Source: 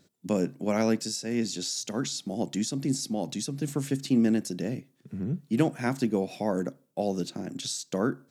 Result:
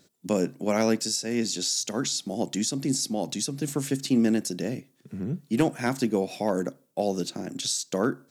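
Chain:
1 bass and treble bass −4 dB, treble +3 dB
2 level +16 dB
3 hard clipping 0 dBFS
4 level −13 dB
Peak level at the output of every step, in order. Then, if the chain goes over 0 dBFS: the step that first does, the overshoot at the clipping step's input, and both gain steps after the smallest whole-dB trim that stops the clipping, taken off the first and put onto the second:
−12.0, +4.0, 0.0, −13.0 dBFS
step 2, 4.0 dB
step 2 +12 dB, step 4 −9 dB

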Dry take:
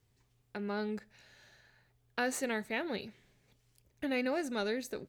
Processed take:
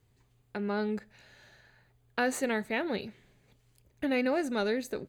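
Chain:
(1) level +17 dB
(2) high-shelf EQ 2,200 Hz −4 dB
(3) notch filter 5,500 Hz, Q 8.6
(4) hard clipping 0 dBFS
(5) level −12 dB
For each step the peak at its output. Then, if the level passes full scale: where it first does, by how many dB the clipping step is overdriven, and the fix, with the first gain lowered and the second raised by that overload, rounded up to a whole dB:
−2.5, −4.5, −4.5, −4.5, −16.5 dBFS
no step passes full scale

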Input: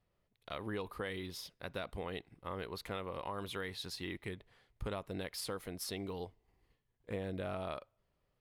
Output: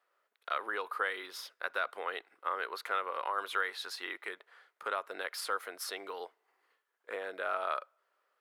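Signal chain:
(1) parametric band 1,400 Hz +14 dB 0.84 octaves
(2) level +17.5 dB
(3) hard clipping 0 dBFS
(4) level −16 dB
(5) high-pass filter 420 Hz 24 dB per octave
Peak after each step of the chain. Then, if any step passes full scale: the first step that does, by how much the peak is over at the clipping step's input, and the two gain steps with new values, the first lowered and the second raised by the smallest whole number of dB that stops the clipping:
−19.5, −2.0, −2.0, −18.0, −18.5 dBFS
no step passes full scale

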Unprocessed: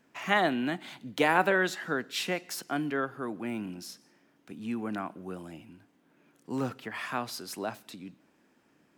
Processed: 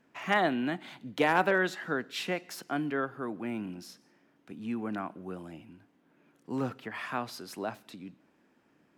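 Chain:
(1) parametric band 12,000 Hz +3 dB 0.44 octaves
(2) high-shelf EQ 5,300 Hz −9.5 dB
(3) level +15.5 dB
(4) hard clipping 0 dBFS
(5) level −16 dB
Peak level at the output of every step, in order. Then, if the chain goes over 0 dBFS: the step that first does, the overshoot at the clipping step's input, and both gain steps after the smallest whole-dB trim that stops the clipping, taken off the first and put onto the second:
−11.5, −12.0, +3.5, 0.0, −16.0 dBFS
step 3, 3.5 dB
step 3 +11.5 dB, step 5 −12 dB

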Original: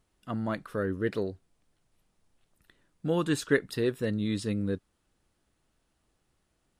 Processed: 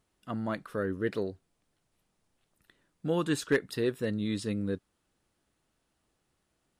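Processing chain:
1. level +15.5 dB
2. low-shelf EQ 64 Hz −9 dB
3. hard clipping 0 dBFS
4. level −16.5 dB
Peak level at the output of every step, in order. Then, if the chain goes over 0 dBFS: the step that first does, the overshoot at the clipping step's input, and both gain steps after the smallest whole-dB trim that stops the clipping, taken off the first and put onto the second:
+4.0, +4.5, 0.0, −16.5 dBFS
step 1, 4.5 dB
step 1 +10.5 dB, step 4 −11.5 dB

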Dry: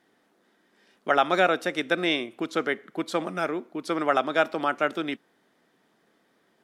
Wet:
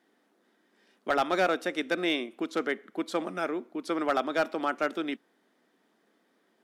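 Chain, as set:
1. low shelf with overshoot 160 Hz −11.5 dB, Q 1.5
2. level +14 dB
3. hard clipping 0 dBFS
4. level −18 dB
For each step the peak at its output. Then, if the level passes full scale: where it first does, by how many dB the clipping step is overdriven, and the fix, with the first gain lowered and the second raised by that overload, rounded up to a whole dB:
−7.0, +7.0, 0.0, −18.0 dBFS
step 2, 7.0 dB
step 2 +7 dB, step 4 −11 dB

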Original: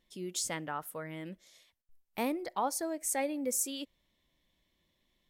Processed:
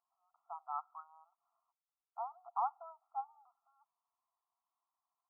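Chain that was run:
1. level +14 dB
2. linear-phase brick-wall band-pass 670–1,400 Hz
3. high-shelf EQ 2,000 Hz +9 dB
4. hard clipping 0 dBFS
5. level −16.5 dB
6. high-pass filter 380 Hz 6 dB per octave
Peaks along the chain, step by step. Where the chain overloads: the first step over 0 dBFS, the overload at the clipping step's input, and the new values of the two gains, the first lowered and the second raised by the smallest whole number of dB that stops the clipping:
−5.5, −7.5, −5.5, −5.5, −22.0, −22.5 dBFS
no step passes full scale

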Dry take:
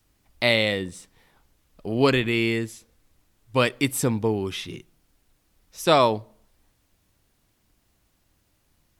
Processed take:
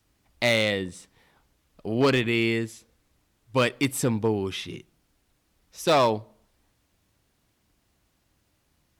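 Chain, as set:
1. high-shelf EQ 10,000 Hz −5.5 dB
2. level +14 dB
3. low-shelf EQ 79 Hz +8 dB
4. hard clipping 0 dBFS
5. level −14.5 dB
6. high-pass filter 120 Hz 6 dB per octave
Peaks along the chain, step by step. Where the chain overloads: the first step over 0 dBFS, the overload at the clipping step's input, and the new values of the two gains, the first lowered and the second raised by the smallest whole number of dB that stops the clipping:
−5.5, +8.0, +8.0, 0.0, −14.5, −11.0 dBFS
step 2, 8.0 dB
step 2 +6 dB, step 5 −6.5 dB

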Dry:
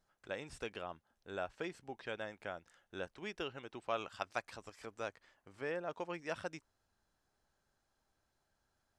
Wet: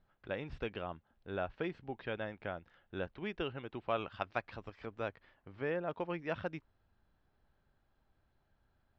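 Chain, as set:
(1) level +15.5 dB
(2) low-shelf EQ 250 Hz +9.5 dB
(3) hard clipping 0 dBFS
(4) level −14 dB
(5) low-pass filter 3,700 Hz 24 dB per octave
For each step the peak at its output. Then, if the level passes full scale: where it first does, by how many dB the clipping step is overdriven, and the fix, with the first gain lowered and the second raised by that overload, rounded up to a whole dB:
−5.5, −5.5, −5.5, −19.5, −20.0 dBFS
no step passes full scale

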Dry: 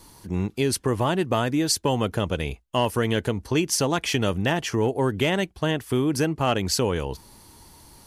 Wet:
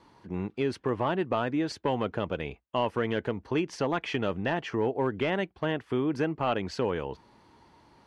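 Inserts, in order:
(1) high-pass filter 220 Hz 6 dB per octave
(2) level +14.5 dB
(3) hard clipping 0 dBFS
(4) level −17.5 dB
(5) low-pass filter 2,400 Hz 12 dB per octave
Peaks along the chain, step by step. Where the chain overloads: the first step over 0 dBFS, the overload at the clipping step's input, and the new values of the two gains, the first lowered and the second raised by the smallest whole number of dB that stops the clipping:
−9.0, +5.5, 0.0, −17.5, −17.0 dBFS
step 2, 5.5 dB
step 2 +8.5 dB, step 4 −11.5 dB

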